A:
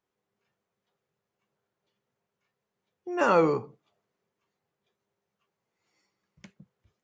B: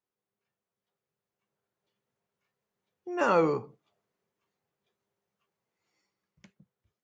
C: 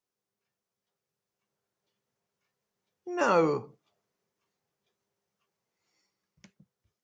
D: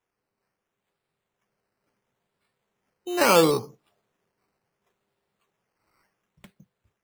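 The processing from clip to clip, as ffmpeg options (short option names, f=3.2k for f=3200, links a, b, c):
-af "dynaudnorm=f=450:g=7:m=7dB,volume=-8.5dB"
-af "equalizer=f=5.6k:t=o:w=0.75:g=6"
-af "acrusher=samples=10:mix=1:aa=0.000001:lfo=1:lforange=6:lforate=0.72,volume=6dB"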